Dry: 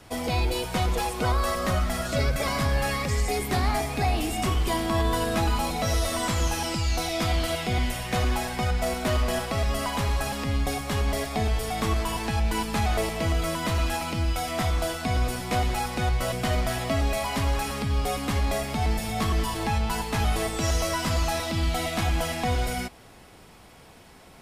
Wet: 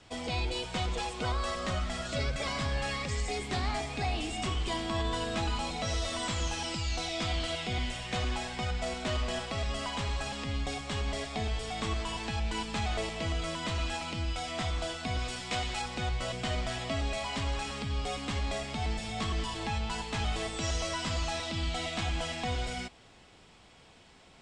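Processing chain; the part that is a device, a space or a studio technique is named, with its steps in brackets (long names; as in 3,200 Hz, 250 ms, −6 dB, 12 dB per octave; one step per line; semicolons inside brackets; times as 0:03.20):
elliptic low-pass filter 8,100 Hz, stop band 80 dB
presence and air boost (parametric band 3,200 Hz +5 dB 0.88 octaves; high-shelf EQ 9,900 Hz +5 dB)
0:15.19–0:15.82: tilt shelving filter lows −3.5 dB
level −7 dB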